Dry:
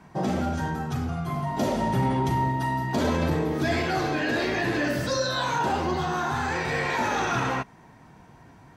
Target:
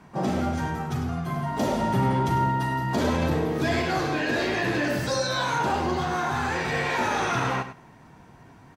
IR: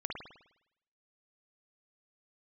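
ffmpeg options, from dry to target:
-filter_complex "[0:a]asplit=2[link_01][link_02];[link_02]aecho=0:1:86|172|258:0.0708|0.0333|0.0156[link_03];[link_01][link_03]amix=inputs=2:normalize=0,asplit=2[link_04][link_05];[link_05]asetrate=66075,aresample=44100,atempo=0.66742,volume=-13dB[link_06];[link_04][link_06]amix=inputs=2:normalize=0,asplit=2[link_07][link_08];[link_08]aecho=0:1:101:0.251[link_09];[link_07][link_09]amix=inputs=2:normalize=0"

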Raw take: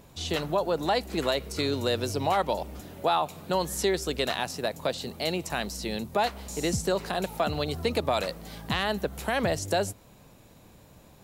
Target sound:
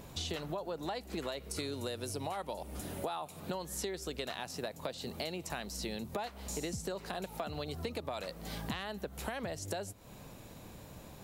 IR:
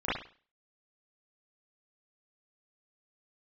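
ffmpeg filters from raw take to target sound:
-filter_complex "[0:a]asettb=1/sr,asplit=3[link_01][link_02][link_03];[link_01]atrim=end=1.514[link_04];[link_02]atrim=start=1.51:end=3.4,asetpts=PTS-STARTPTS,afade=type=in:duration=0.004:curve=qsin,afade=type=out:start_time=1.886:duration=0.004:curve=qsin,equalizer=frequency=9800:width_type=o:width=0.5:gain=10[link_05];[link_03]atrim=start=3.396[link_06];[link_04][link_05]acrossfade=duration=0.004:curve1=hsin:curve2=qsin[link_07];[link_07][link_06]acrossfade=duration=0.004:curve1=qsin:curve2=hsin,acompressor=threshold=-39dB:ratio=8,volume=3dB"

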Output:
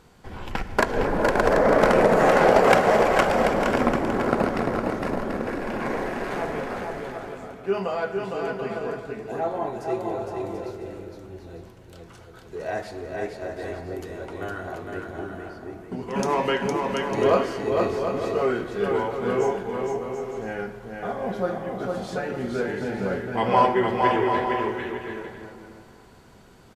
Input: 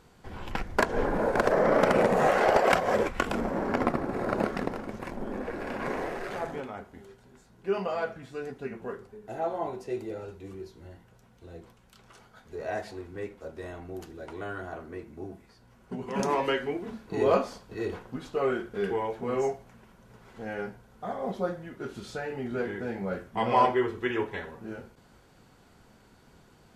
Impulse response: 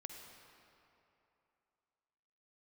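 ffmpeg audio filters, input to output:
-filter_complex "[0:a]aecho=1:1:460|736|901.6|1001|1061:0.631|0.398|0.251|0.158|0.1,asplit=2[link_01][link_02];[1:a]atrim=start_sample=2205,asetrate=40131,aresample=44100[link_03];[link_02][link_03]afir=irnorm=-1:irlink=0,volume=-1dB[link_04];[link_01][link_04]amix=inputs=2:normalize=0"

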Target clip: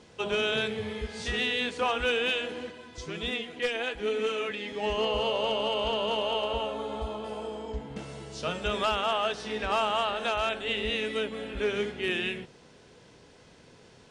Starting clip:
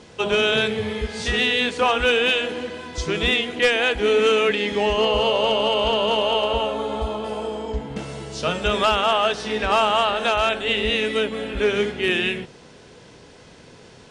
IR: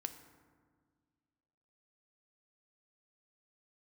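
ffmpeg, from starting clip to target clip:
-filter_complex "[0:a]asplit=3[link_01][link_02][link_03];[link_01]afade=type=out:start_time=2.7:duration=0.02[link_04];[link_02]flanger=delay=4.1:depth=4.8:regen=41:speed=1.2:shape=sinusoidal,afade=type=in:start_time=2.7:duration=0.02,afade=type=out:start_time=4.82:duration=0.02[link_05];[link_03]afade=type=in:start_time=4.82:duration=0.02[link_06];[link_04][link_05][link_06]amix=inputs=3:normalize=0,volume=-8.5dB"

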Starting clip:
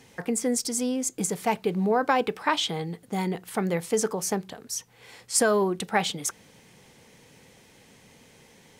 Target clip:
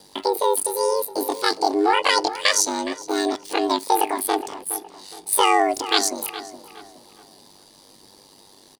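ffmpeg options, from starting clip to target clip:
ffmpeg -i in.wav -filter_complex "[0:a]equalizer=frequency=800:width_type=o:width=0.33:gain=-11,equalizer=frequency=2500:width_type=o:width=0.33:gain=10,equalizer=frequency=5000:width_type=o:width=0.33:gain=10,equalizer=frequency=8000:width_type=o:width=0.33:gain=-8,equalizer=frequency=12500:width_type=o:width=0.33:gain=3,asplit=2[link_01][link_02];[link_02]aeval=exprs='sgn(val(0))*max(abs(val(0))-0.00562,0)':channel_layout=same,volume=-6dB[link_03];[link_01][link_03]amix=inputs=2:normalize=0,highshelf=frequency=11000:gain=-7,acrossover=split=7900[link_04][link_05];[link_05]acompressor=threshold=-46dB:ratio=4:attack=1:release=60[link_06];[link_04][link_06]amix=inputs=2:normalize=0,asetrate=83250,aresample=44100,atempo=0.529732,aeval=exprs='val(0)*sin(2*PI*49*n/s)':channel_layout=same,asplit=2[link_07][link_08];[link_08]adelay=416,lowpass=frequency=2900:poles=1,volume=-12.5dB,asplit=2[link_09][link_10];[link_10]adelay=416,lowpass=frequency=2900:poles=1,volume=0.38,asplit=2[link_11][link_12];[link_12]adelay=416,lowpass=frequency=2900:poles=1,volume=0.38,asplit=2[link_13][link_14];[link_14]adelay=416,lowpass=frequency=2900:poles=1,volume=0.38[link_15];[link_09][link_11][link_13][link_15]amix=inputs=4:normalize=0[link_16];[link_07][link_16]amix=inputs=2:normalize=0,volume=5.5dB" out.wav

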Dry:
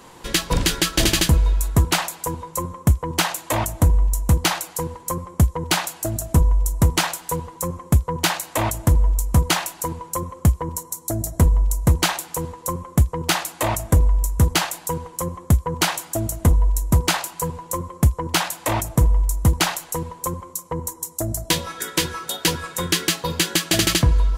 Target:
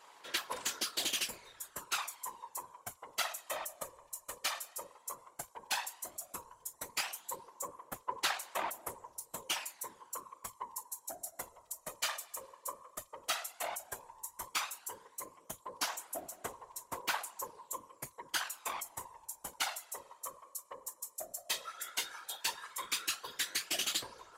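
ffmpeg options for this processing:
ffmpeg -i in.wav -af "highpass=750,afftfilt=real='hypot(re,im)*cos(2*PI*random(0))':imag='hypot(re,im)*sin(2*PI*random(1))':win_size=512:overlap=0.75,aphaser=in_gain=1:out_gain=1:delay=1.7:decay=0.44:speed=0.12:type=sinusoidal,volume=-9dB" out.wav

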